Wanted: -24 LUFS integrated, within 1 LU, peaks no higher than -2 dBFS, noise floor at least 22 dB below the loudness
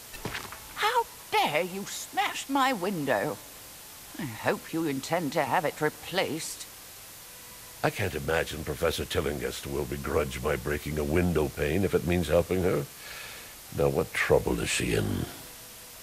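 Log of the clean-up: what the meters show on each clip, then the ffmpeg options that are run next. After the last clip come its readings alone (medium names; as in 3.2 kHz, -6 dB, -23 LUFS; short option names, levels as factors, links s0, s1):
noise floor -46 dBFS; noise floor target -51 dBFS; loudness -29.0 LUFS; peak level -10.0 dBFS; loudness target -24.0 LUFS
-> -af "afftdn=nr=6:nf=-46"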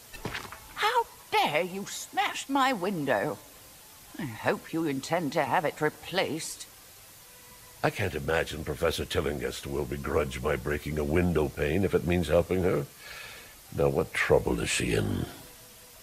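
noise floor -51 dBFS; loudness -29.0 LUFS; peak level -10.5 dBFS; loudness target -24.0 LUFS
-> -af "volume=1.78"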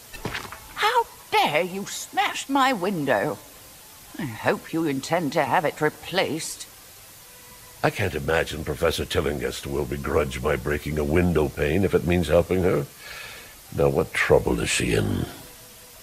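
loudness -24.0 LUFS; peak level -5.5 dBFS; noise floor -46 dBFS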